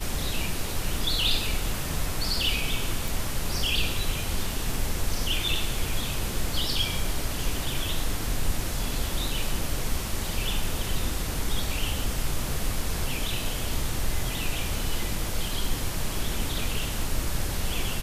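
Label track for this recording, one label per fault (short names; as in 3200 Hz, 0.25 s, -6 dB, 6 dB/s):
3.080000	3.080000	pop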